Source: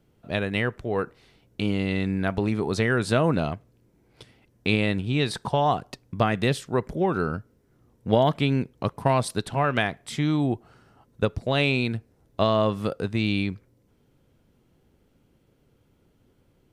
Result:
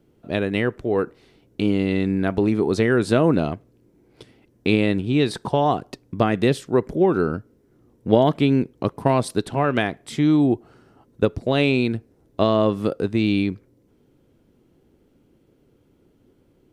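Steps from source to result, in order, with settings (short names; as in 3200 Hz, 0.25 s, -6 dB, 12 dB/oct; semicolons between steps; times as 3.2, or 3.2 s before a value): bell 330 Hz +8.5 dB 1.3 oct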